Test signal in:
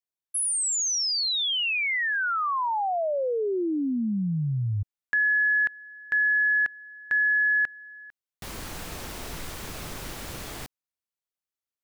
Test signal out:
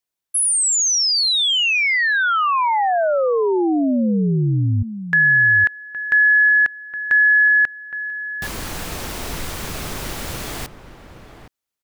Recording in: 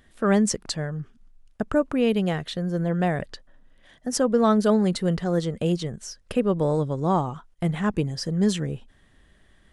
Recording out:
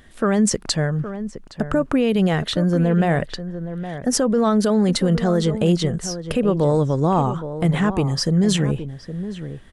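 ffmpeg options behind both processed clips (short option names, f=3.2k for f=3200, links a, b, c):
-filter_complex "[0:a]alimiter=limit=-18.5dB:level=0:latency=1:release=36,asplit=2[a][b];[b]adelay=816.3,volume=-11dB,highshelf=f=4k:g=-18.4[c];[a][c]amix=inputs=2:normalize=0,volume=8.5dB"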